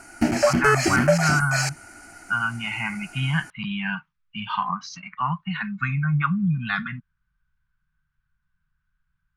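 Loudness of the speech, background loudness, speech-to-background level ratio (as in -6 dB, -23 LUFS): -25.5 LUFS, -22.0 LUFS, -3.5 dB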